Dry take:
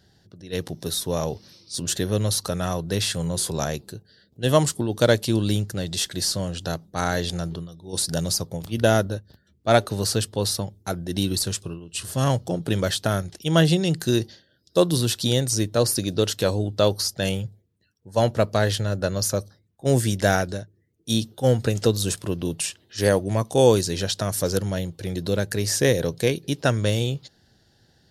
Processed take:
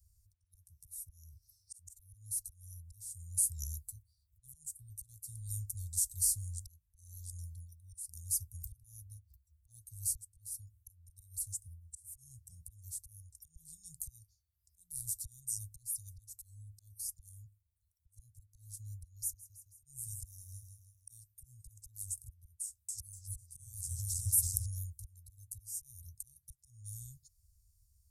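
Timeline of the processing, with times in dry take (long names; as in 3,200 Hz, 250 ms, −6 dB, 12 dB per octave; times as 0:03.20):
0:18.98–0:21.10: repeating echo 162 ms, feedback 33%, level −10 dB
0:22.64–0:24.66: delay with pitch and tempo change per echo 245 ms, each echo −1 semitone, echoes 3
whole clip: volume swells 729 ms; inverse Chebyshev band-stop filter 220–2,900 Hz, stop band 60 dB; level +2.5 dB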